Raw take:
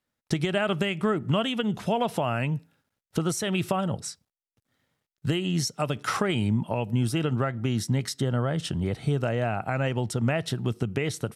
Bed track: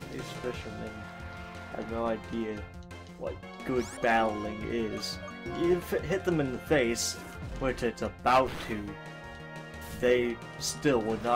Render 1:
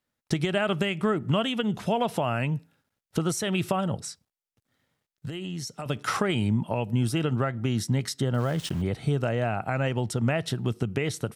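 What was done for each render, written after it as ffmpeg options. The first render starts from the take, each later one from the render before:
ffmpeg -i in.wav -filter_complex "[0:a]asettb=1/sr,asplit=3[link_01][link_02][link_03];[link_01]atrim=end=4.044[link_04];[link_02]atrim=start=4.04:end=5.86,asetpts=PTS-STARTPTS,afade=type=in:duration=0.004:curve=qsin,afade=type=out:start_time=1.816:duration=0.004:curve=qsin,acompressor=threshold=-31dB:ratio=6:attack=3.2:release=140:knee=1:detection=peak[link_05];[link_03]atrim=start=5.856[link_06];[link_04][link_05]acrossfade=duration=0.004:curve1=hsin:curve2=qsin[link_07];[link_07][link_06]acrossfade=duration=0.004:curve1=qsin:curve2=hsin,asettb=1/sr,asplit=3[link_08][link_09][link_10];[link_08]atrim=end=8.344[link_11];[link_09]atrim=start=8.34:end=8.82,asetpts=PTS-STARTPTS,afade=type=in:duration=0.004:curve=qsin,afade=type=out:start_time=0.476:duration=0.004:curve=qsin,aeval=exprs='val(0)*gte(abs(val(0)),0.0119)':channel_layout=same[link_12];[link_10]atrim=start=8.816[link_13];[link_11][link_12]acrossfade=duration=0.004:curve1=hsin:curve2=qsin[link_14];[link_14][link_13]acrossfade=duration=0.004:curve1=qsin:curve2=hsin" out.wav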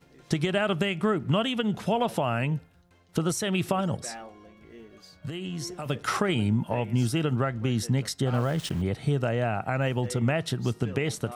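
ffmpeg -i in.wav -i bed.wav -filter_complex "[1:a]volume=-16dB[link_01];[0:a][link_01]amix=inputs=2:normalize=0" out.wav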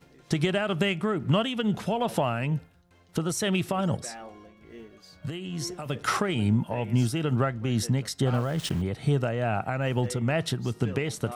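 ffmpeg -i in.wav -filter_complex "[0:a]asplit=2[link_01][link_02];[link_02]asoftclip=type=tanh:threshold=-22dB,volume=-9.5dB[link_03];[link_01][link_03]amix=inputs=2:normalize=0,tremolo=f=2.3:d=0.4" out.wav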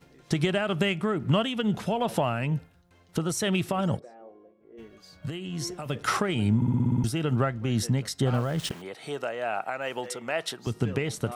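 ffmpeg -i in.wav -filter_complex "[0:a]asplit=3[link_01][link_02][link_03];[link_01]afade=type=out:start_time=3.98:duration=0.02[link_04];[link_02]bandpass=frequency=450:width_type=q:width=2,afade=type=in:start_time=3.98:duration=0.02,afade=type=out:start_time=4.77:duration=0.02[link_05];[link_03]afade=type=in:start_time=4.77:duration=0.02[link_06];[link_04][link_05][link_06]amix=inputs=3:normalize=0,asettb=1/sr,asplit=3[link_07][link_08][link_09];[link_07]atrim=end=8.714[link_10];[link_08]atrim=start=8.71:end=10.67,asetpts=PTS-STARTPTS,afade=type=in:duration=0.004:curve=qsin,afade=type=out:start_time=1.956:duration=0.004:curve=qsin,highpass=480[link_11];[link_09]atrim=start=10.666[link_12];[link_10][link_11]acrossfade=duration=0.004:curve1=hsin:curve2=qsin[link_13];[link_13][link_12]acrossfade=duration=0.004:curve1=qsin:curve2=hsin,asplit=9[link_14][link_15][link_16][link_17][link_18][link_19][link_20][link_21][link_22];[link_14]atrim=end=6.622[link_23];[link_15]atrim=start=6.558:end=6.622[link_24];[link_16]atrim=start=6.558:end=6.622[link_25];[link_17]atrim=start=6.558:end=6.622[link_26];[link_18]atrim=start=6.558:end=6.622[link_27];[link_19]atrim=start=6.558:end=6.622[link_28];[link_20]atrim=start=6.558:end=6.622[link_29];[link_21]atrim=start=6.558:end=6.622[link_30];[link_22]atrim=start=7.038[link_31];[link_23][link_24]acrossfade=duration=0.004:curve1=hsin:curve2=hsin[link_32];[link_32][link_25]acrossfade=duration=0.004:curve1=hsin:curve2=hsin[link_33];[link_33][link_26]acrossfade=duration=0.004:curve1=hsin:curve2=hsin[link_34];[link_34][link_27]acrossfade=duration=0.004:curve1=hsin:curve2=hsin[link_35];[link_35][link_28]acrossfade=duration=0.004:curve1=hsin:curve2=hsin[link_36];[link_36][link_29]acrossfade=duration=0.004:curve1=hsin:curve2=hsin[link_37];[link_37][link_30]acrossfade=duration=0.004:curve1=hsin:curve2=hsin[link_38];[link_38][link_31]acrossfade=duration=0.004:curve1=hsin:curve2=hsin" out.wav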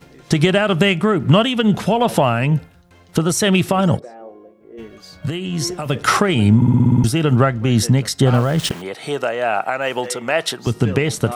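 ffmpeg -i in.wav -af "volume=11dB,alimiter=limit=-2dB:level=0:latency=1" out.wav

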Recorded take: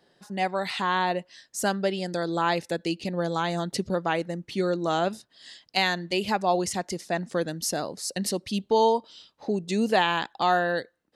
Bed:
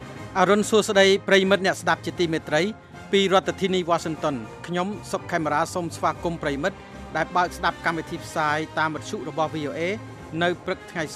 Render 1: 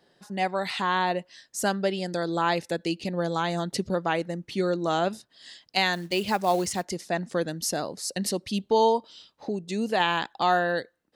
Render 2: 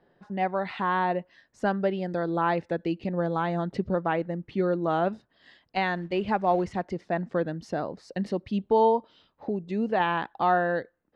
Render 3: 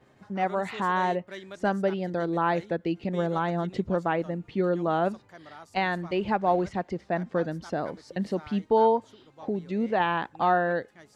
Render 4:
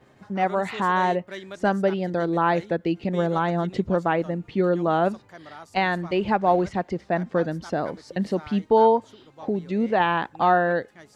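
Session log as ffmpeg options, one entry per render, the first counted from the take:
ffmpeg -i in.wav -filter_complex "[0:a]asettb=1/sr,asplit=3[link_01][link_02][link_03];[link_01]atrim=end=5.934[link_04];[link_02]atrim=start=5.93:end=6.85,asetpts=PTS-STARTPTS,afade=type=in:duration=0.004:curve=qsin,afade=type=out:start_time=0.916:duration=0.004:curve=qsin,acrusher=bits=5:mode=log:mix=0:aa=0.000001[link_05];[link_03]atrim=start=6.846[link_06];[link_04][link_05]acrossfade=duration=0.004:curve1=hsin:curve2=qsin[link_07];[link_07][link_06]acrossfade=duration=0.004:curve1=qsin:curve2=hsin,asplit=3[link_08][link_09][link_10];[link_08]atrim=end=9.492[link_11];[link_09]atrim=start=9.488:end=10.002,asetpts=PTS-STARTPTS,volume=-3.5dB[link_12];[link_10]atrim=start=9.998[link_13];[link_11][link_12]acrossfade=duration=0.004:curve1=hsin:curve2=hsin[link_14];[link_14][link_13]acrossfade=duration=0.004:curve1=hsin:curve2=hsin" out.wav
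ffmpeg -i in.wav -af "lowpass=1800,lowshelf=frequency=61:gain=10" out.wav
ffmpeg -i in.wav -i bed.wav -filter_complex "[1:a]volume=-24dB[link_01];[0:a][link_01]amix=inputs=2:normalize=0" out.wav
ffmpeg -i in.wav -af "volume=4dB" out.wav

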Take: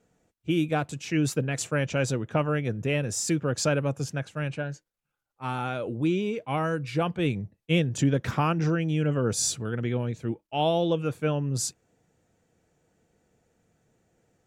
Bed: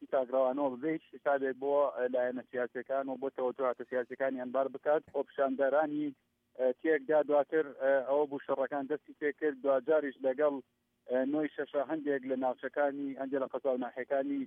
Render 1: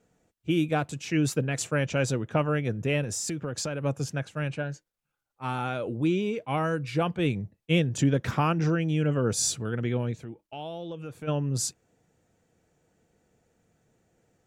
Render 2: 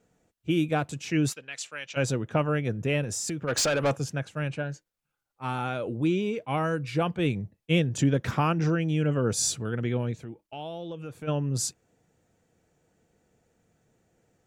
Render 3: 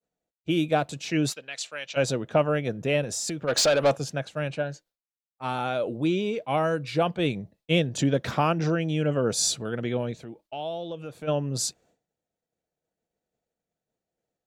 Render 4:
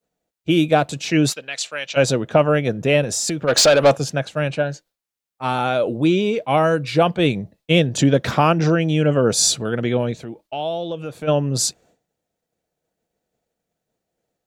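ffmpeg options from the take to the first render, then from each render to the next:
ffmpeg -i in.wav -filter_complex "[0:a]asettb=1/sr,asplit=3[link_01][link_02][link_03];[link_01]atrim=end=3.034[link_04];[link_02]atrim=start=3.03:end=3.84,asetpts=PTS-STARTPTS,afade=type=in:duration=0.004:curve=qsin,afade=type=out:start_time=0.806:duration=0.004:curve=qsin,acompressor=threshold=-28dB:ratio=6:attack=3.2:release=140:knee=1:detection=peak[link_05];[link_03]atrim=start=3.836[link_06];[link_04][link_05]acrossfade=duration=0.004:curve1=hsin:curve2=qsin[link_07];[link_07][link_06]acrossfade=duration=0.004:curve1=qsin:curve2=hsin,asplit=3[link_08][link_09][link_10];[link_08]afade=type=out:start_time=10.15:duration=0.02[link_11];[link_09]acompressor=threshold=-38dB:ratio=3:attack=3.2:release=140:knee=1:detection=peak,afade=type=in:start_time=10.15:duration=0.02,afade=type=out:start_time=11.27:duration=0.02[link_12];[link_10]afade=type=in:start_time=11.27:duration=0.02[link_13];[link_11][link_12][link_13]amix=inputs=3:normalize=0" out.wav
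ffmpeg -i in.wav -filter_complex "[0:a]asplit=3[link_01][link_02][link_03];[link_01]afade=type=out:start_time=1.32:duration=0.02[link_04];[link_02]bandpass=frequency=3600:width_type=q:width=0.96,afade=type=in:start_time=1.32:duration=0.02,afade=type=out:start_time=1.96:duration=0.02[link_05];[link_03]afade=type=in:start_time=1.96:duration=0.02[link_06];[link_04][link_05][link_06]amix=inputs=3:normalize=0,asplit=3[link_07][link_08][link_09];[link_07]afade=type=out:start_time=3.47:duration=0.02[link_10];[link_08]asplit=2[link_11][link_12];[link_12]highpass=frequency=720:poles=1,volume=23dB,asoftclip=type=tanh:threshold=-16dB[link_13];[link_11][link_13]amix=inputs=2:normalize=0,lowpass=frequency=7400:poles=1,volume=-6dB,afade=type=in:start_time=3.47:duration=0.02,afade=type=out:start_time=3.95:duration=0.02[link_14];[link_09]afade=type=in:start_time=3.95:duration=0.02[link_15];[link_10][link_14][link_15]amix=inputs=3:normalize=0" out.wav
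ffmpeg -i in.wav -af "equalizer=frequency=100:width_type=o:width=0.67:gain=-7,equalizer=frequency=630:width_type=o:width=0.67:gain=7,equalizer=frequency=4000:width_type=o:width=0.67:gain=7,agate=range=-33dB:threshold=-54dB:ratio=3:detection=peak" out.wav
ffmpeg -i in.wav -af "volume=8dB,alimiter=limit=-3dB:level=0:latency=1" out.wav

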